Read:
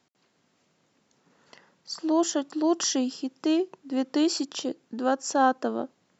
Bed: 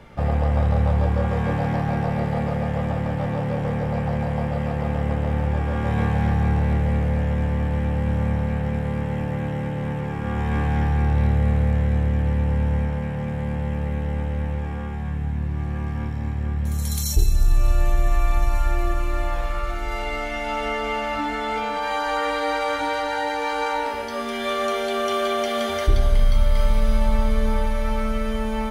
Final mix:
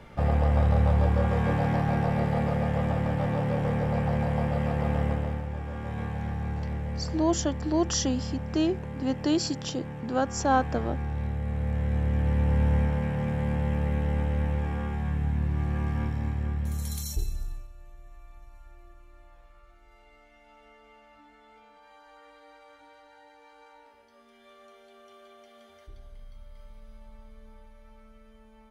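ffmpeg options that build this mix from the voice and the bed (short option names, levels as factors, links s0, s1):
-filter_complex "[0:a]adelay=5100,volume=0.841[s0];[1:a]volume=2.37,afade=t=out:st=5.01:d=0.43:silence=0.354813,afade=t=in:st=11.46:d=1.2:silence=0.316228,afade=t=out:st=15.99:d=1.69:silence=0.0375837[s1];[s0][s1]amix=inputs=2:normalize=0"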